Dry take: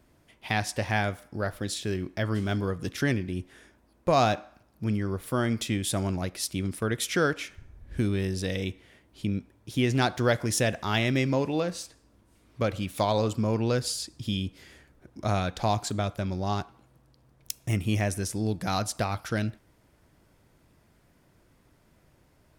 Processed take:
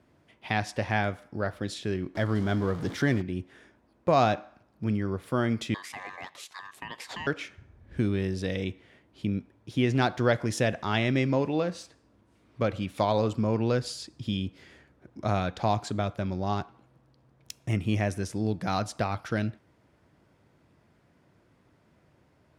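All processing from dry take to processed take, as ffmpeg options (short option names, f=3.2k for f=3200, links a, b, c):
-filter_complex "[0:a]asettb=1/sr,asplit=3[a][b][c];[a]atrim=end=2.154[d];[b]atrim=start=2.15:end=3.22,asetpts=PTS-STARTPTS,afade=t=in:d=0.004:c=qsin,afade=t=out:st=1.066:d=0.004:c=qsin,aeval=exprs='val(0)+0.5*0.0188*sgn(val(0))':c=same,equalizer=f=2.6k:w=7.9:g=-9.5[e];[c]atrim=start=3.216[f];[d][e]acrossfade=d=0.004:c1=hsin:c2=qsin[g];[g][f]acrossfade=d=0.004:c1=qsin:c2=hsin,asettb=1/sr,asplit=3[h][i][j];[h]atrim=end=5.744[k];[i]atrim=start=5.74:end=7.27,asetpts=PTS-STARTPTS,afade=t=in:d=0.004:c=qsin,afade=t=out:st=1.526:d=0.004:c=qsin,highpass=440,acompressor=threshold=-30dB:ratio=4:attack=3.2:release=140:knee=1:detection=peak,aeval=exprs='val(0)*sin(2*PI*1400*n/s)':c=same[l];[j]atrim=start=7.266[m];[k][l]acrossfade=d=0.004:c1=hsin:c2=qsin[n];[n][m]acrossfade=d=0.004:c1=qsin:c2=hsin,highpass=84,aemphasis=mode=reproduction:type=50fm"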